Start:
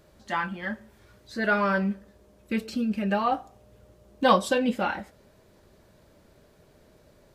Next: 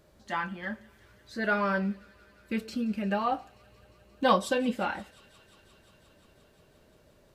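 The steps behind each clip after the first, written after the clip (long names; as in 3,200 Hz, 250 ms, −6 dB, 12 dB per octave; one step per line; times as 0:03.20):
delay with a high-pass on its return 176 ms, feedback 84%, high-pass 2,500 Hz, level −20.5 dB
level −3.5 dB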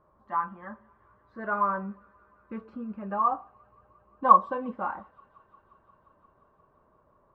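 low-pass with resonance 1,100 Hz, resonance Q 8.4
level −7 dB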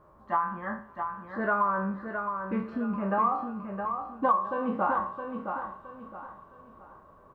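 peak hold with a decay on every bin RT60 0.41 s
downward compressor 6 to 1, threshold −29 dBFS, peak gain reduction 19 dB
on a send: repeating echo 666 ms, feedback 32%, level −6.5 dB
on the sum: level +6 dB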